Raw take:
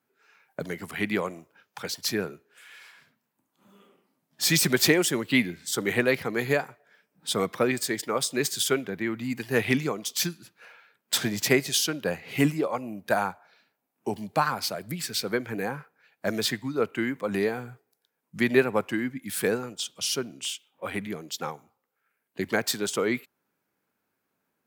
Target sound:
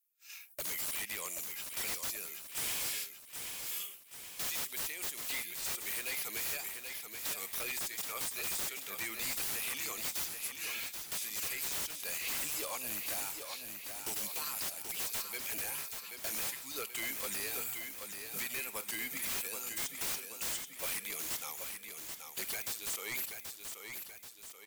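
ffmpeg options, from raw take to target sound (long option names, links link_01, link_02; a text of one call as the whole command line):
ffmpeg -i in.wav -filter_complex "[0:a]bandreject=frequency=1500:width=7.3,agate=range=-33dB:threshold=-54dB:ratio=3:detection=peak,aderivative,acompressor=threshold=-56dB:ratio=12,aexciter=amount=2.3:drive=6:freq=2300,aeval=exprs='0.0211*sin(PI/2*7.08*val(0)/0.0211)':channel_layout=same,asplit=2[link_01][link_02];[link_02]aecho=0:1:781|1562|2343|3124|3905|4686:0.473|0.241|0.123|0.0628|0.032|0.0163[link_03];[link_01][link_03]amix=inputs=2:normalize=0" out.wav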